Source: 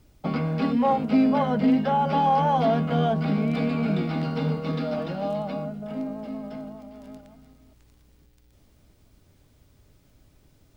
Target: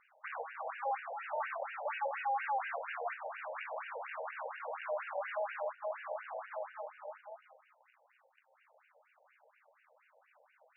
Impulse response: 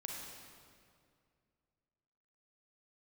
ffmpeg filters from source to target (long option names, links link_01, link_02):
-filter_complex "[0:a]aeval=exprs='(tanh(112*val(0)+0.55)-tanh(0.55))/112':channel_layout=same,asettb=1/sr,asplit=3[link_01][link_02][link_03];[link_01]atrim=end=1.024[link_04];[link_02]atrim=start=1.02:end=1.99,asetpts=PTS-STARTPTS,afade=type=in:duration=0.004:curve=qsin,afade=type=out:start_time=0.966:duration=0.004:curve=qsin,afreqshift=47[link_05];[link_03]atrim=start=1.986[link_06];[link_04][link_05]acrossfade=duration=0.004:curve1=hsin:curve2=qsin[link_07];[link_07][link_06]acrossfade=duration=0.004:curve1=qsin:curve2=hsin,afftfilt=real='re*between(b*sr/1024,640*pow(2100/640,0.5+0.5*sin(2*PI*4.2*pts/sr))/1.41,640*pow(2100/640,0.5+0.5*sin(2*PI*4.2*pts/sr))*1.41)':imag='im*between(b*sr/1024,640*pow(2100/640,0.5+0.5*sin(2*PI*4.2*pts/sr))/1.41,640*pow(2100/640,0.5+0.5*sin(2*PI*4.2*pts/sr))*1.41)':win_size=1024:overlap=0.75,volume=10.5dB"